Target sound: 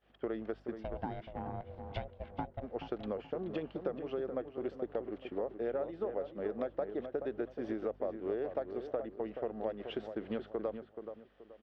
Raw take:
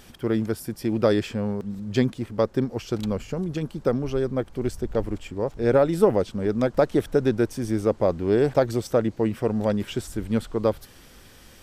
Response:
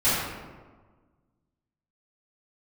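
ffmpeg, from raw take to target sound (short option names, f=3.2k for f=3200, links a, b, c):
-filter_complex "[0:a]highpass=430,equalizer=f=670:t=q:w=4:g=3,equalizer=f=960:t=q:w=4:g=-7,equalizer=f=1.5k:t=q:w=4:g=-5,equalizer=f=2.3k:t=q:w=4:g=-8,lowpass=f=2.7k:w=0.5412,lowpass=f=2.7k:w=1.3066,acompressor=threshold=-37dB:ratio=8,aeval=exprs='val(0)+0.001*(sin(2*PI*50*n/s)+sin(2*PI*2*50*n/s)/2+sin(2*PI*3*50*n/s)/3+sin(2*PI*4*50*n/s)/4+sin(2*PI*5*50*n/s)/5)':c=same,asplit=3[a][b][c];[a]afade=t=out:st=0.74:d=0.02[d];[b]aeval=exprs='val(0)*sin(2*PI*290*n/s)':c=same,afade=t=in:st=0.74:d=0.02,afade=t=out:st=2.62:d=0.02[e];[c]afade=t=in:st=2.62:d=0.02[f];[d][e][f]amix=inputs=3:normalize=0,agate=range=-33dB:threshold=-45dB:ratio=3:detection=peak,asplit=2[g][h];[h]adelay=428,lowpass=f=1.9k:p=1,volume=-8dB,asplit=2[i][j];[j]adelay=428,lowpass=f=1.9k:p=1,volume=0.31,asplit=2[k][l];[l]adelay=428,lowpass=f=1.9k:p=1,volume=0.31,asplit=2[m][n];[n]adelay=428,lowpass=f=1.9k:p=1,volume=0.31[o];[g][i][k][m][o]amix=inputs=5:normalize=0,volume=3dB"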